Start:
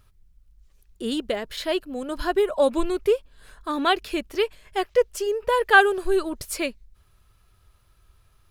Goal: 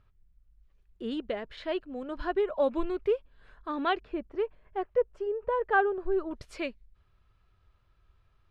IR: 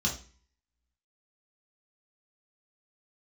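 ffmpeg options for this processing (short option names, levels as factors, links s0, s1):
-af "asetnsamples=n=441:p=0,asendcmd='4 lowpass f 1200;6.31 lowpass f 3200',lowpass=2600,volume=0.473"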